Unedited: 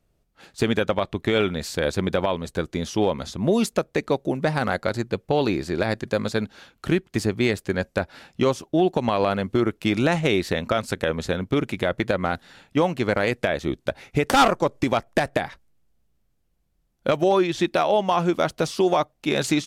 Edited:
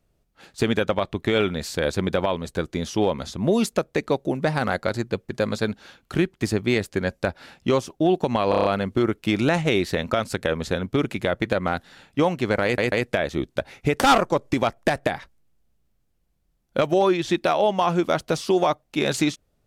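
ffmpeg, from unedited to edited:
-filter_complex "[0:a]asplit=9[a][b][c][d][e][f][g][h][i];[a]atrim=end=5.292[j];[b]atrim=start=6.018:end=9.262[k];[c]atrim=start=9.228:end=9.262[l];[d]atrim=start=9.228:end=9.262[m];[e]atrim=start=9.228:end=9.262[n];[f]atrim=start=9.228:end=9.262[o];[g]atrim=start=9.228:end=13.362[p];[h]atrim=start=13.218:end=13.362[q];[i]atrim=start=13.218[r];[j][k]acrossfade=d=0.004:c1=hsin:c2=hsin[s];[s][l]acrossfade=d=0.004:c1=hsin:c2=hsin[t];[t][m]acrossfade=d=0.004:c1=hsin:c2=hsin[u];[u][n]acrossfade=d=0.004:c1=hsin:c2=hsin[v];[v][o]acrossfade=d=0.004:c1=hsin:c2=hsin[w];[w][p]acrossfade=d=0.004:c1=hsin:c2=hsin[x];[x][q]acrossfade=d=0.004:c1=hsin:c2=hsin[y];[y][r]acrossfade=d=0.004:c1=hsin:c2=hsin"

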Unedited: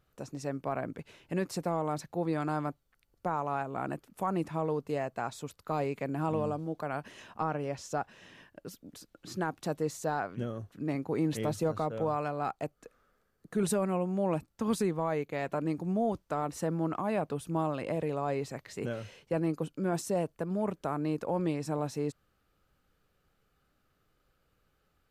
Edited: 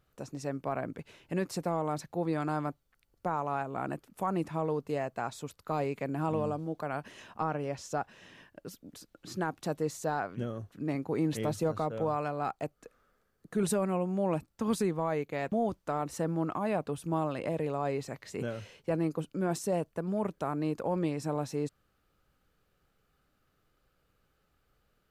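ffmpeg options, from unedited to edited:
-filter_complex "[0:a]asplit=2[a][b];[a]atrim=end=15.522[c];[b]atrim=start=15.948[d];[c][d]acrossfade=d=0.004:c1=hsin:c2=hsin"

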